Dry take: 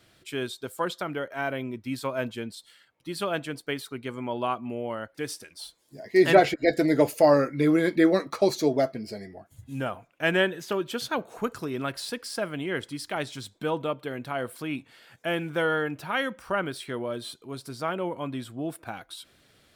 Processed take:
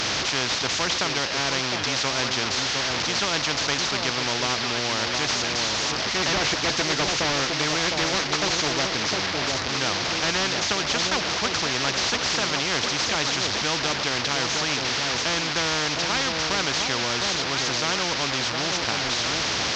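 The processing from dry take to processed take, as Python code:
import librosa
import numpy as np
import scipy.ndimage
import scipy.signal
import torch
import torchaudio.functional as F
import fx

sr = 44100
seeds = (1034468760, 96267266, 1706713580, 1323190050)

y = fx.delta_mod(x, sr, bps=32000, step_db=-36.5)
y = scipy.signal.sosfilt(scipy.signal.butter(2, 67.0, 'highpass', fs=sr, output='sos'), y)
y = fx.peak_eq(y, sr, hz=4800.0, db=4.5, octaves=0.52)
y = fx.echo_alternate(y, sr, ms=709, hz=880.0, feedback_pct=55, wet_db=-8.5)
y = fx.spectral_comp(y, sr, ratio=4.0)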